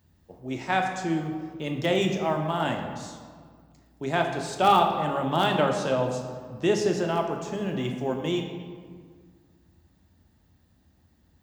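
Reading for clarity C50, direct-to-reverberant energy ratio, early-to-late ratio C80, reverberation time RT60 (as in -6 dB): 5.5 dB, 2.5 dB, 7.0 dB, 1.8 s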